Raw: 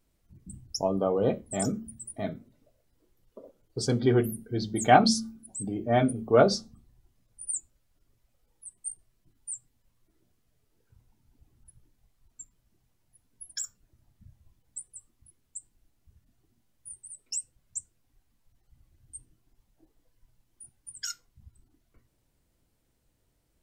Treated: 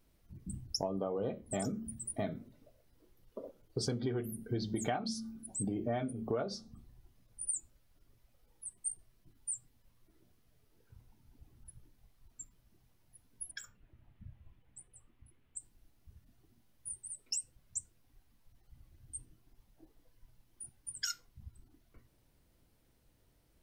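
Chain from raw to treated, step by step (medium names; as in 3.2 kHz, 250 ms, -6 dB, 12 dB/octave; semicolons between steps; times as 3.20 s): peaking EQ 7.5 kHz -5.5 dB 0.43 oct; compression 20:1, threshold -34 dBFS, peak gain reduction 23.5 dB; 13.51–15.57 s: resonant high shelf 3.8 kHz -11 dB, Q 1.5; trim +2.5 dB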